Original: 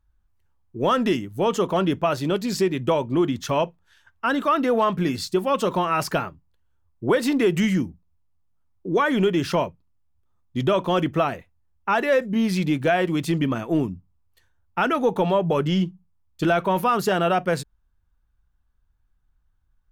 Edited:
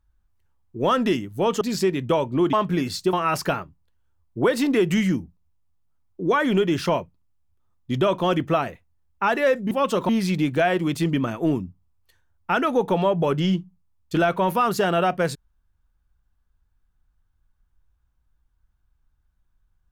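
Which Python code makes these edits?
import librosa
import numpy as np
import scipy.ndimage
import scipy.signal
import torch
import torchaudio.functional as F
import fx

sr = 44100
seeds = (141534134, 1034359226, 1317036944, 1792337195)

y = fx.edit(x, sr, fx.cut(start_s=1.61, length_s=0.78),
    fx.cut(start_s=3.31, length_s=1.5),
    fx.move(start_s=5.41, length_s=0.38, to_s=12.37), tone=tone)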